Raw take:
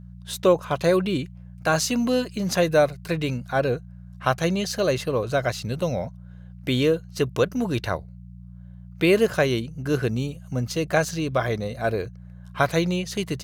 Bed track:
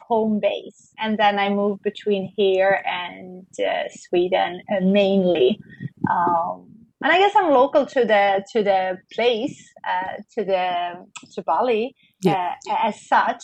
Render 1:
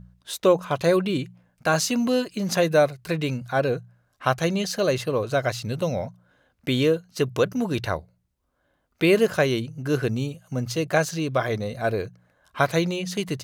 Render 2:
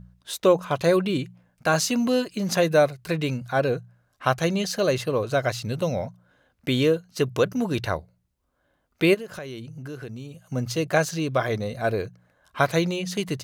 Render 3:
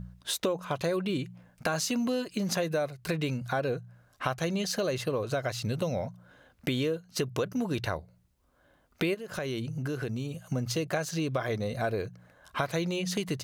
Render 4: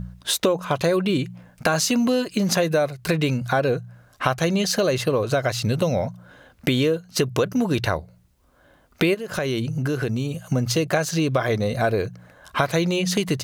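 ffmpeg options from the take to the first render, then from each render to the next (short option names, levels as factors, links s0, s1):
-af "bandreject=f=60:t=h:w=4,bandreject=f=120:t=h:w=4,bandreject=f=180:t=h:w=4"
-filter_complex "[0:a]asplit=3[s0][s1][s2];[s0]afade=t=out:st=9.13:d=0.02[s3];[s1]acompressor=threshold=0.0178:ratio=4:attack=3.2:release=140:knee=1:detection=peak,afade=t=in:st=9.13:d=0.02,afade=t=out:st=10.42:d=0.02[s4];[s2]afade=t=in:st=10.42:d=0.02[s5];[s3][s4][s5]amix=inputs=3:normalize=0"
-filter_complex "[0:a]asplit=2[s0][s1];[s1]alimiter=limit=0.158:level=0:latency=1:release=36,volume=0.75[s2];[s0][s2]amix=inputs=2:normalize=0,acompressor=threshold=0.0355:ratio=4"
-af "volume=2.82"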